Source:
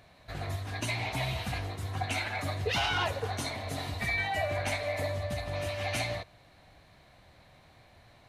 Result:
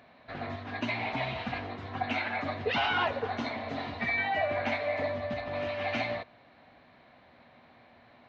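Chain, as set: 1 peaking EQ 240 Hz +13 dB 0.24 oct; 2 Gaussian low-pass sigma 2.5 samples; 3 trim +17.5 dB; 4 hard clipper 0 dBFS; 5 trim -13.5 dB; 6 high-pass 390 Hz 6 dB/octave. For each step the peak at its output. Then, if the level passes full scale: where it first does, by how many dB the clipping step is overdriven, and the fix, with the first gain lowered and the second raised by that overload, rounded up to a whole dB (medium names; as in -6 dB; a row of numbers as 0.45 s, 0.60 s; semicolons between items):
-18.0 dBFS, -19.5 dBFS, -2.0 dBFS, -2.0 dBFS, -15.5 dBFS, -18.0 dBFS; nothing clips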